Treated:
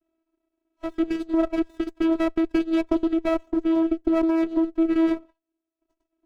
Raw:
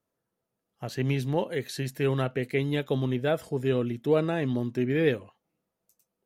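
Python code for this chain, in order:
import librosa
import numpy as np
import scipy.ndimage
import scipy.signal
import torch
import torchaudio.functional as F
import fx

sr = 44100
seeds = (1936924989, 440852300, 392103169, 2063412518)

p1 = fx.vocoder(x, sr, bands=16, carrier='saw', carrier_hz=326.0)
p2 = fx.over_compress(p1, sr, threshold_db=-28.0, ratio=-0.5)
p3 = p1 + F.gain(torch.from_numpy(p2), -1.0).numpy()
p4 = fx.transient(p3, sr, attack_db=1, sustain_db=-12)
p5 = fx.running_max(p4, sr, window=17)
y = F.gain(torch.from_numpy(p5), 1.5).numpy()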